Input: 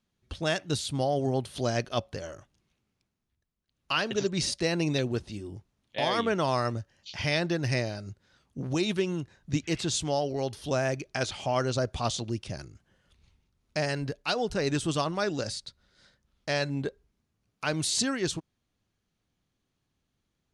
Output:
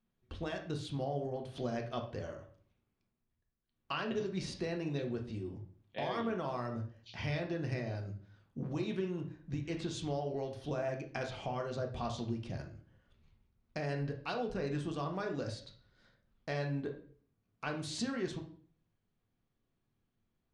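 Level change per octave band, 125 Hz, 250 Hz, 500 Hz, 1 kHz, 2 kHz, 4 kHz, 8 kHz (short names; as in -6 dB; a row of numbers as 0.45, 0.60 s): -6.5, -7.0, -8.0, -8.5, -10.5, -14.0, -17.5 dB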